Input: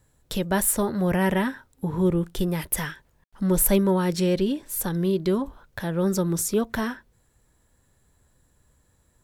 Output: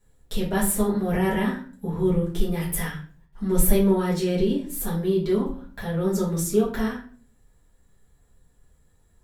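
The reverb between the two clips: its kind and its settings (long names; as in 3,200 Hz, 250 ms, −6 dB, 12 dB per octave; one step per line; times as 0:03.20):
rectangular room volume 35 cubic metres, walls mixed, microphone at 1.3 metres
level −9.5 dB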